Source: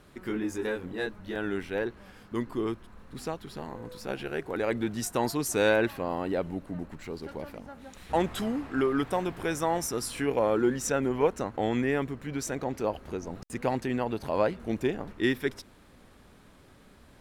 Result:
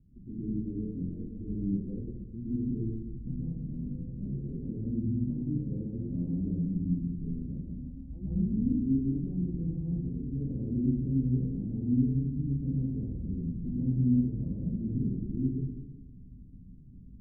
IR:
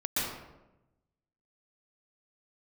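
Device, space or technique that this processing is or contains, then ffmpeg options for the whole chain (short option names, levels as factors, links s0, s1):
club heard from the street: -filter_complex "[0:a]alimiter=limit=0.0891:level=0:latency=1,lowpass=f=210:w=0.5412,lowpass=f=210:w=1.3066[s0];[1:a]atrim=start_sample=2205[s1];[s0][s1]afir=irnorm=-1:irlink=0"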